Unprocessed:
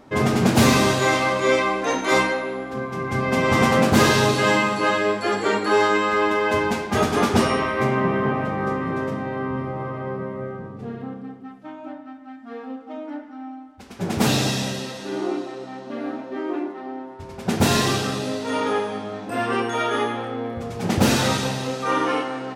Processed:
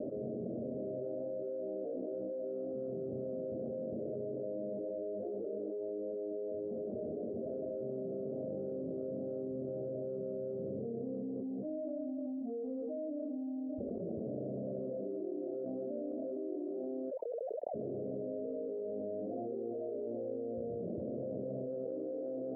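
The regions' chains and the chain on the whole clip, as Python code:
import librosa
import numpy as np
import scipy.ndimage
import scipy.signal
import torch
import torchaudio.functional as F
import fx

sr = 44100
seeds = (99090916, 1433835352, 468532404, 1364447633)

y = fx.chain(x, sr, fx.sine_speech(),
    fx.env_flatten(amount_pct=50), at=(17.11, 17.74))
y = scipy.signal.sosfilt(scipy.signal.butter(16, 630.0, 'lowpass', fs=sr, output='sos'), y)
y = np.diff(y, prepend=0.0)
y = fx.env_flatten(y, sr, amount_pct=100)
y = y * 10.0 ** (1.5 / 20.0)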